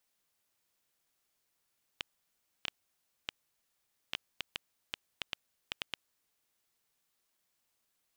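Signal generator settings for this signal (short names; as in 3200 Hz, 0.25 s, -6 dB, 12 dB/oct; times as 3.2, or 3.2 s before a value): random clicks 3.3/s -16.5 dBFS 4.38 s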